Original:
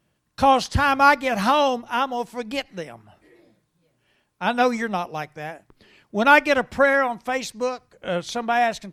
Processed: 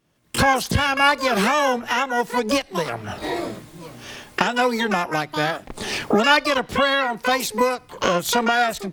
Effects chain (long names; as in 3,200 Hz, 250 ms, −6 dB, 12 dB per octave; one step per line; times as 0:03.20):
camcorder AGC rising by 42 dB per second
pitch-shifted copies added +12 semitones −3 dB
level −3.5 dB